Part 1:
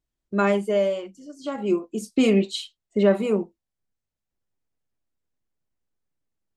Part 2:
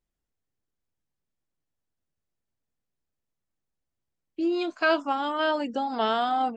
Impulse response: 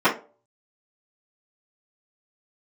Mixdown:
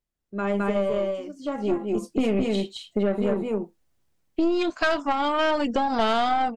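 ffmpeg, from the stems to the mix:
-filter_complex "[0:a]highshelf=f=3200:g=-8,volume=0.266,asplit=2[s0][s1];[s1]volume=0.668[s2];[1:a]volume=1.06[s3];[s2]aecho=0:1:214:1[s4];[s0][s3][s4]amix=inputs=3:normalize=0,dynaudnorm=f=140:g=7:m=5.62,aeval=exprs='(tanh(3.16*val(0)+0.55)-tanh(0.55))/3.16':c=same,acompressor=threshold=0.0891:ratio=2.5"

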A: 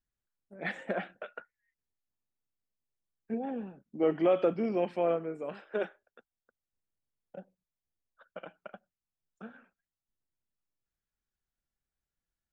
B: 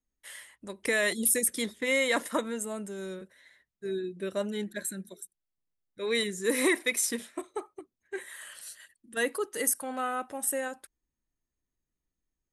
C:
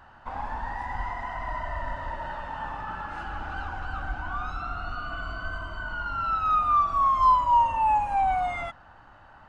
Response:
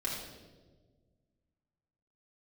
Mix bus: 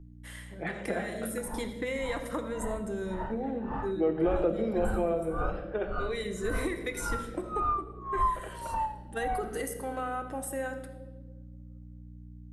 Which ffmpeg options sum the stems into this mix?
-filter_complex "[0:a]volume=1.06,asplit=3[s0][s1][s2];[s1]volume=0.473[s3];[1:a]acompressor=threshold=0.0282:ratio=6,aeval=exprs='val(0)+0.00316*(sin(2*PI*60*n/s)+sin(2*PI*2*60*n/s)/2+sin(2*PI*3*60*n/s)/3+sin(2*PI*4*60*n/s)/4+sin(2*PI*5*60*n/s)/5)':c=same,volume=1.12,asplit=2[s4][s5];[s5]volume=0.447[s6];[2:a]highshelf=f=3500:g=-8.5,dynaudnorm=f=400:g=11:m=3.16,aeval=exprs='val(0)*pow(10,-33*(0.5-0.5*cos(2*PI*1.8*n/s))/20)':c=same,adelay=1000,volume=0.501,asplit=2[s7][s8];[s8]volume=0.133[s9];[s2]apad=whole_len=552137[s10];[s4][s10]sidechaincompress=threshold=0.01:ratio=8:attack=16:release=390[s11];[3:a]atrim=start_sample=2205[s12];[s3][s6][s9]amix=inputs=3:normalize=0[s13];[s13][s12]afir=irnorm=-1:irlink=0[s14];[s0][s11][s7][s14]amix=inputs=4:normalize=0,highshelf=f=2100:g=-9,acrossover=split=130[s15][s16];[s16]acompressor=threshold=0.0251:ratio=1.5[s17];[s15][s17]amix=inputs=2:normalize=0"

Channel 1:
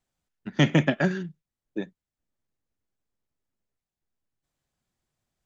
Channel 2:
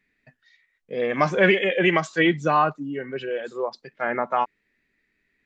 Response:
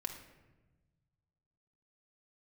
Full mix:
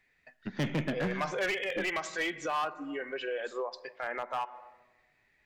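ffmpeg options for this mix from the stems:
-filter_complex "[0:a]aeval=exprs='if(lt(val(0),0),0.708*val(0),val(0))':c=same,lowpass=4200,acontrast=26,volume=0.891,asplit=2[s0][s1];[s1]volume=0.15[s2];[1:a]highpass=500,volume=0.944,asplit=2[s3][s4];[s4]volume=0.266[s5];[2:a]atrim=start_sample=2205[s6];[s2][s5]amix=inputs=2:normalize=0[s7];[s7][s6]afir=irnorm=-1:irlink=0[s8];[s0][s3][s8]amix=inputs=3:normalize=0,asoftclip=type=hard:threshold=0.158,alimiter=level_in=1.33:limit=0.0631:level=0:latency=1:release=135,volume=0.75"

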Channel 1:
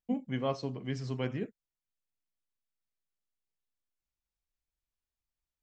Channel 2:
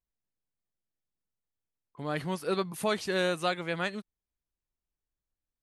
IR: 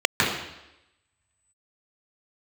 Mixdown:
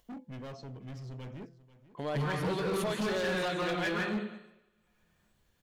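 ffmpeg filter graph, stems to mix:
-filter_complex "[0:a]lowshelf=f=130:g=10.5,bandreject=f=169.3:t=h:w=4,bandreject=f=338.6:t=h:w=4,bandreject=f=507.9:t=h:w=4,bandreject=f=677.2:t=h:w=4,bandreject=f=846.5:t=h:w=4,bandreject=f=1015.8:t=h:w=4,bandreject=f=1185.1:t=h:w=4,bandreject=f=1354.4:t=h:w=4,bandreject=f=1523.7:t=h:w=4,bandreject=f=1693:t=h:w=4,asoftclip=type=hard:threshold=0.0224,volume=0.422,asplit=2[s0][s1];[s1]volume=0.133[s2];[1:a]acompressor=threshold=0.0178:ratio=8,volume=0.891,asplit=3[s3][s4][s5];[s4]volume=0.316[s6];[s5]volume=0.112[s7];[2:a]atrim=start_sample=2205[s8];[s6][s8]afir=irnorm=-1:irlink=0[s9];[s2][s7]amix=inputs=2:normalize=0,aecho=0:1:490:1[s10];[s0][s3][s9][s10]amix=inputs=4:normalize=0,acompressor=mode=upward:threshold=0.00126:ratio=2.5,asoftclip=type=hard:threshold=0.0398"

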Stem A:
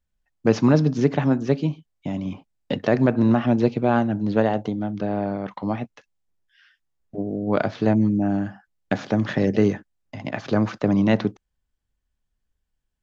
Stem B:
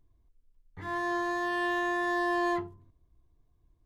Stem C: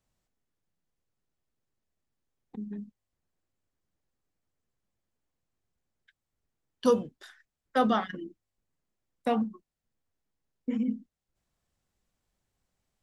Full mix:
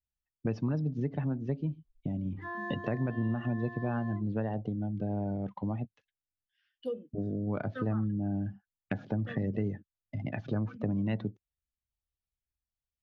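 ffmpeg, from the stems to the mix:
-filter_complex "[0:a]equalizer=f=79:w=0.49:g=14,volume=0.376[s0];[1:a]acompressor=threshold=0.01:ratio=3,adelay=1600,volume=1.12[s1];[2:a]asplit=2[s2][s3];[s3]afreqshift=-1.3[s4];[s2][s4]amix=inputs=2:normalize=1,volume=0.398[s5];[s0][s1][s5]amix=inputs=3:normalize=0,afftdn=nr=17:nf=-39,equalizer=f=3000:w=0.88:g=7.5,acompressor=threshold=0.0251:ratio=3"

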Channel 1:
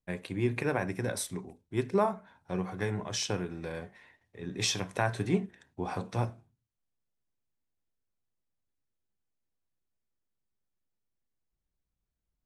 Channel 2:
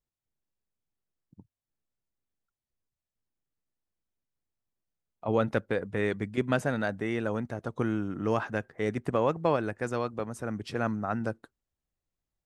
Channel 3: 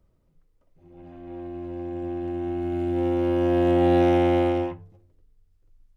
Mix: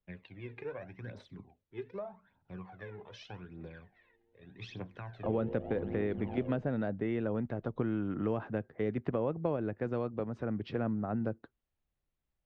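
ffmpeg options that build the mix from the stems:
-filter_complex "[0:a]volume=0.2[s0];[1:a]volume=1.06,asplit=2[s1][s2];[2:a]tremolo=f=110:d=0.974,adelay=1850,volume=0.316[s3];[s2]apad=whole_len=344860[s4];[s3][s4]sidechaingate=range=0.0224:threshold=0.00398:ratio=16:detection=peak[s5];[s0][s5]amix=inputs=2:normalize=0,aphaser=in_gain=1:out_gain=1:delay=2.5:decay=0.69:speed=0.83:type=triangular,acompressor=threshold=0.02:ratio=6,volume=1[s6];[s1][s6]amix=inputs=2:normalize=0,lowpass=f=3700:w=0.5412,lowpass=f=3700:w=1.3066,acrossover=split=82|630[s7][s8][s9];[s7]acompressor=threshold=0.00178:ratio=4[s10];[s8]acompressor=threshold=0.0355:ratio=4[s11];[s9]acompressor=threshold=0.00447:ratio=4[s12];[s10][s11][s12]amix=inputs=3:normalize=0"

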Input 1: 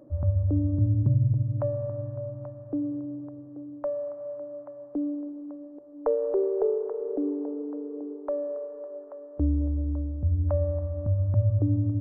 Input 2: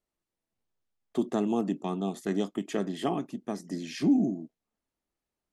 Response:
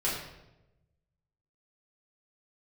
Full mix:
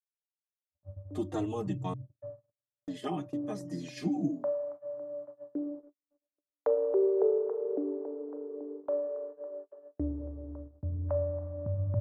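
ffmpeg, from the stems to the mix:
-filter_complex "[0:a]highpass=110,acompressor=mode=upward:threshold=0.00891:ratio=2.5,adelay=600,volume=0.562,afade=t=in:st=3.08:d=0.3:silence=0.266073,asplit=2[s0][s1];[s1]volume=0.188[s2];[1:a]aecho=1:1:6.5:0.83,asplit=2[s3][s4];[s4]adelay=4,afreqshift=-2.1[s5];[s3][s5]amix=inputs=2:normalize=1,volume=0.668,asplit=3[s6][s7][s8];[s6]atrim=end=1.94,asetpts=PTS-STARTPTS,afade=t=out:st=1.936:d=0.004:c=hsin[s9];[s7]atrim=start=1.94:end=2.87,asetpts=PTS-STARTPTS,volume=0[s10];[s8]atrim=start=2.87,asetpts=PTS-STARTPTS,afade=t=in:d=0.004:c=hsin[s11];[s9][s10][s11]concat=n=3:v=0:a=1[s12];[2:a]atrim=start_sample=2205[s13];[s2][s13]afir=irnorm=-1:irlink=0[s14];[s0][s12][s14]amix=inputs=3:normalize=0,agate=range=0.00158:threshold=0.00794:ratio=16:detection=peak"

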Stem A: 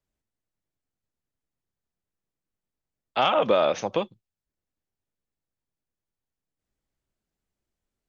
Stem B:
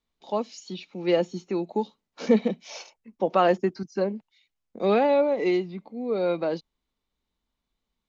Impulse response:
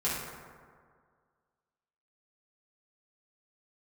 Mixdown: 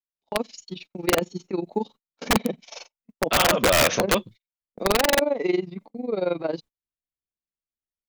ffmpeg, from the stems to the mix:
-filter_complex "[0:a]bandreject=f=820:w=5.1,acontrast=67,adelay=150,volume=1.26[s0];[1:a]tremolo=f=22:d=0.857,volume=0.841,asplit=2[s1][s2];[s2]apad=whole_len=362963[s3];[s0][s3]sidechaincompress=threshold=0.0112:ratio=4:attack=33:release=373[s4];[s4][s1]amix=inputs=2:normalize=0,agate=range=0.0224:threshold=0.00447:ratio=16:detection=peak,acontrast=32,aeval=exprs='(mod(3.98*val(0)+1,2)-1)/3.98':c=same"

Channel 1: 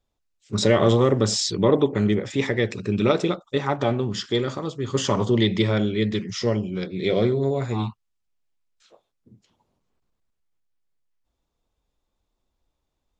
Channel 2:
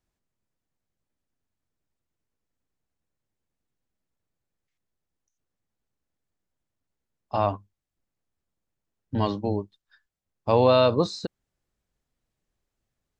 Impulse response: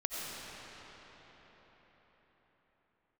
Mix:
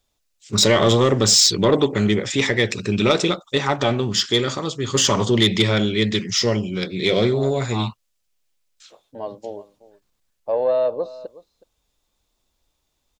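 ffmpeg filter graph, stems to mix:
-filter_complex "[0:a]volume=1.33,asplit=2[s0][s1];[1:a]bandpass=f=570:t=q:w=3.9:csg=0,volume=1.33,asplit=2[s2][s3];[s3]volume=0.112[s4];[s1]apad=whole_len=581696[s5];[s2][s5]sidechaincompress=threshold=0.0708:ratio=8:attack=16:release=390[s6];[s4]aecho=0:1:369:1[s7];[s0][s6][s7]amix=inputs=3:normalize=0,highshelf=f=2000:g=11.5,asoftclip=type=tanh:threshold=0.473"

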